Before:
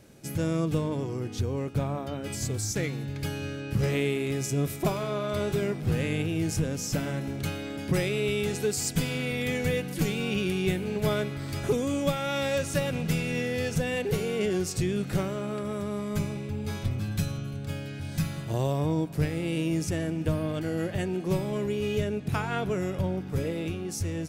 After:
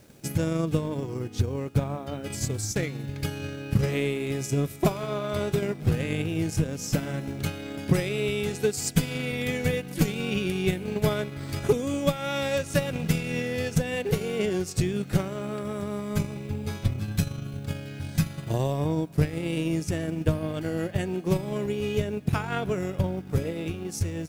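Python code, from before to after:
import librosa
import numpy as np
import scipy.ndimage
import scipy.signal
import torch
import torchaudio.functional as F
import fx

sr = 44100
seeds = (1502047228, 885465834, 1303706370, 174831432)

y = fx.quant_dither(x, sr, seeds[0], bits=10, dither='none')
y = fx.transient(y, sr, attack_db=6, sustain_db=-6)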